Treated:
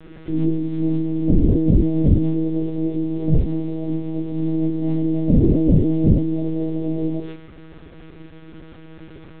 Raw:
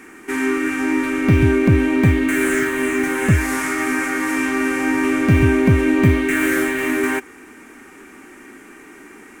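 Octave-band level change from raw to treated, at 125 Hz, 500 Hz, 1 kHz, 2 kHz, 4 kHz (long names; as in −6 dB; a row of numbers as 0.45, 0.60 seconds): −1.0 dB, −5.0 dB, below −15 dB, below −30 dB, below −15 dB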